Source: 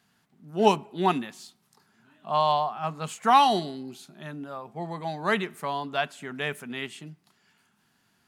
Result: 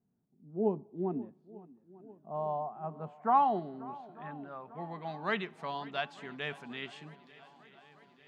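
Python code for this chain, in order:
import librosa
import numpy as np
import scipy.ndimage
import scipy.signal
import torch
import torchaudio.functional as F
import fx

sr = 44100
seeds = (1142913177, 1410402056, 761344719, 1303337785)

y = fx.filter_sweep_lowpass(x, sr, from_hz=410.0, to_hz=4700.0, start_s=1.97, end_s=5.79, q=1.1)
y = fx.echo_swing(y, sr, ms=895, ratio=1.5, feedback_pct=59, wet_db=-20.0)
y = y * librosa.db_to_amplitude(-8.0)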